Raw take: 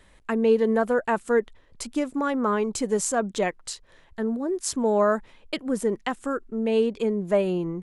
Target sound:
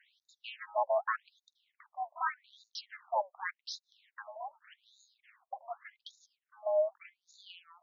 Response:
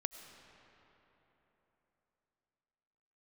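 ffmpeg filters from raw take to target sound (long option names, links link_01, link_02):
-af "aeval=exprs='val(0)*sin(2*PI*170*n/s)':channel_layout=same,afftfilt=real='re*between(b*sr/1024,740*pow(5100/740,0.5+0.5*sin(2*PI*0.85*pts/sr))/1.41,740*pow(5100/740,0.5+0.5*sin(2*PI*0.85*pts/sr))*1.41)':imag='im*between(b*sr/1024,740*pow(5100/740,0.5+0.5*sin(2*PI*0.85*pts/sr))/1.41,740*pow(5100/740,0.5+0.5*sin(2*PI*0.85*pts/sr))*1.41)':win_size=1024:overlap=0.75"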